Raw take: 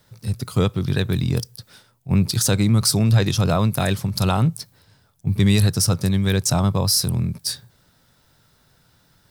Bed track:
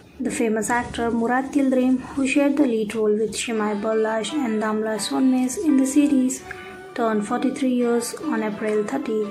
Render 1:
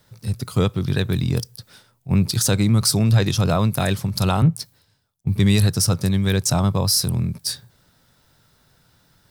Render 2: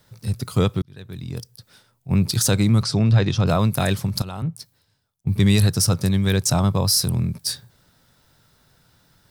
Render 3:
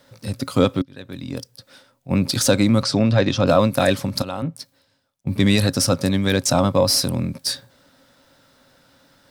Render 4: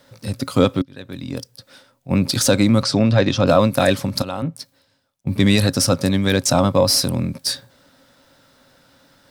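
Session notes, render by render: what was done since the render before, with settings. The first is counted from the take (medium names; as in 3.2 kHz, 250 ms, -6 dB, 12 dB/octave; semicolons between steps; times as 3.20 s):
4.42–5.27 s: three bands expanded up and down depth 70%
0.82–2.33 s: fade in; 2.83–3.47 s: distance through air 120 m; 4.22–5.38 s: fade in, from -16.5 dB
overdrive pedal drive 10 dB, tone 4.7 kHz, clips at -5.5 dBFS; small resonant body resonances 270/540 Hz, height 14 dB, ringing for 65 ms
trim +1.5 dB; peak limiter -2 dBFS, peak gain reduction 1 dB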